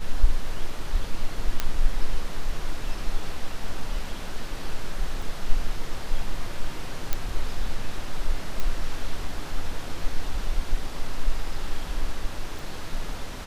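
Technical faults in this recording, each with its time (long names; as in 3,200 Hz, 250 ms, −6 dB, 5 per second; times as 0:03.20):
0:01.60: click −9 dBFS
0:05.22: drop-out 4.5 ms
0:07.13: click −9 dBFS
0:08.60: click −14 dBFS
0:12.59: click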